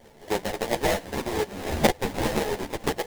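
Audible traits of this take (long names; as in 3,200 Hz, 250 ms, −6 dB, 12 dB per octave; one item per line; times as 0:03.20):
tremolo triangle 6 Hz, depth 50%
aliases and images of a low sample rate 1,300 Hz, jitter 20%
a shimmering, thickened sound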